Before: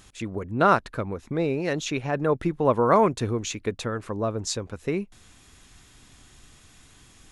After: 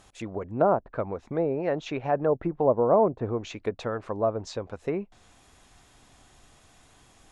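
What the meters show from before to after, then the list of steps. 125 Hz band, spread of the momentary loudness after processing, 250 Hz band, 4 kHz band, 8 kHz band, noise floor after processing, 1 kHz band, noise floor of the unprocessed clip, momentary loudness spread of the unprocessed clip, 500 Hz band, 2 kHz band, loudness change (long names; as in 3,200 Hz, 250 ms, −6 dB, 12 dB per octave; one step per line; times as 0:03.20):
−5.0 dB, 12 LU, −3.5 dB, −9.0 dB, below −10 dB, −59 dBFS, −4.0 dB, −54 dBFS, 12 LU, +0.5 dB, −9.5 dB, −2.0 dB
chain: treble cut that deepens with the level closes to 640 Hz, closed at −18.5 dBFS
parametric band 700 Hz +10.5 dB 1.3 octaves
level −5.5 dB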